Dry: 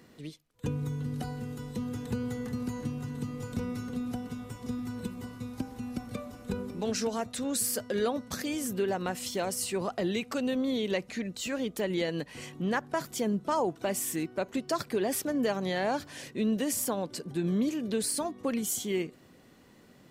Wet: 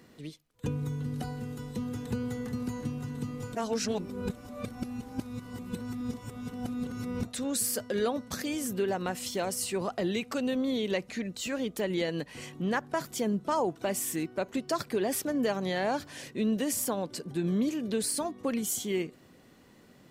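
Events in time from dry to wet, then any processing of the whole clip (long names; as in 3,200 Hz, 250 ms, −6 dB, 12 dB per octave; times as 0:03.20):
0:03.55–0:07.25: reverse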